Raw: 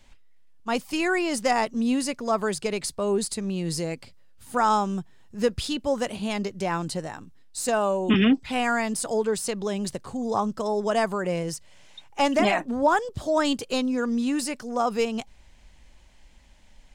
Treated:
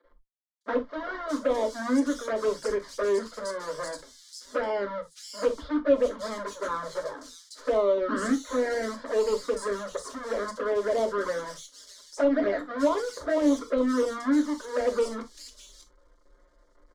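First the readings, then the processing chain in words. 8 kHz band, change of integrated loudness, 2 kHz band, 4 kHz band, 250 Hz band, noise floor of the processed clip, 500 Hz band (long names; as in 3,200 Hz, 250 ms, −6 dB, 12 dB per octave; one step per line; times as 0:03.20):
−8.0 dB, −2.5 dB, −5.5 dB, −8.5 dB, −3.0 dB, −62 dBFS, +0.5 dB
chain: each half-wave held at its own peak
low shelf with overshoot 250 Hz −10 dB, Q 3
brickwall limiter −11.5 dBFS, peak gain reduction 8 dB
phaser with its sweep stopped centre 520 Hz, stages 8
asymmetric clip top −17 dBFS
flanger swept by the level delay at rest 5.9 ms, full sweep at −18.5 dBFS
high-frequency loss of the air 100 metres
three-band delay without the direct sound mids, lows, highs 40/610 ms, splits 200/3,500 Hz
reverb whose tail is shaped and stops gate 90 ms falling, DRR 5 dB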